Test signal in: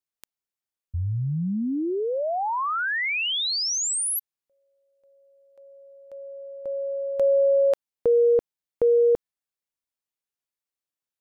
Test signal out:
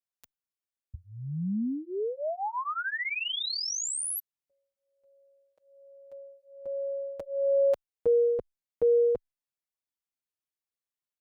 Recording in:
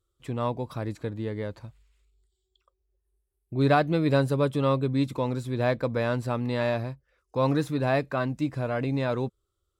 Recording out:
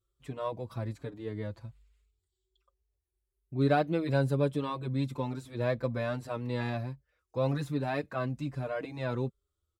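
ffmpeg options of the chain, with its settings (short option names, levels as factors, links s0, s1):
-filter_complex "[0:a]equalizer=f=73:w=0.72:g=3.5,asplit=2[s0][s1];[s1]adelay=5.5,afreqshift=1.2[s2];[s0][s2]amix=inputs=2:normalize=1,volume=0.668"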